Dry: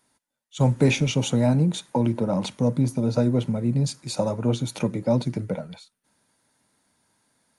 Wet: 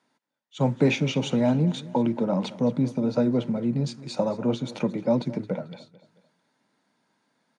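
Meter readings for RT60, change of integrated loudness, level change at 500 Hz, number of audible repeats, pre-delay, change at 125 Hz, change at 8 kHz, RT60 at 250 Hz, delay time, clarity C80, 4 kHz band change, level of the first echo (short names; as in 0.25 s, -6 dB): none, -1.5 dB, -0.5 dB, 3, none, -5.5 dB, -9.0 dB, none, 0.221 s, none, -3.0 dB, -18.0 dB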